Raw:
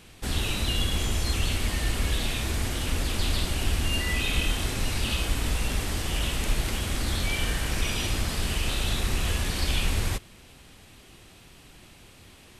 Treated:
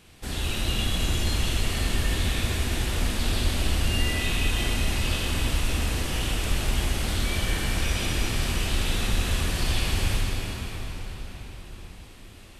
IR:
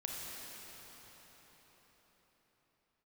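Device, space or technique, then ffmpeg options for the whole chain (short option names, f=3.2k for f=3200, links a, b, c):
cathedral: -filter_complex "[1:a]atrim=start_sample=2205[a];[0:a][a]afir=irnorm=-1:irlink=0"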